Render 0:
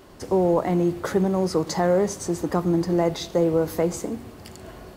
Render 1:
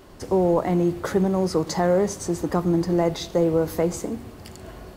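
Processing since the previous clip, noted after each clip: low shelf 70 Hz +6 dB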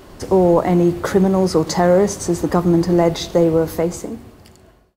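ending faded out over 1.63 s; gain +6.5 dB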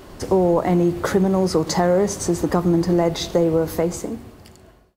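compressor 2:1, threshold -16 dBFS, peak gain reduction 4.5 dB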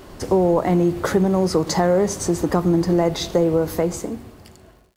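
crackle 170/s -49 dBFS

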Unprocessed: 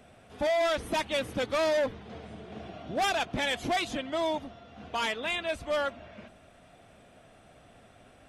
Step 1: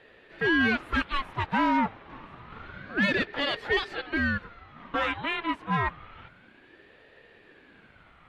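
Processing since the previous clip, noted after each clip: three-band isolator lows -17 dB, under 490 Hz, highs -23 dB, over 2600 Hz; ring modulator with a swept carrier 740 Hz, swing 55%, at 0.28 Hz; gain +8 dB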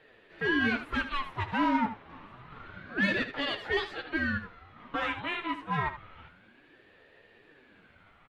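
flange 1.2 Hz, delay 6.1 ms, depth 6.6 ms, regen +43%; echo 76 ms -11.5 dB

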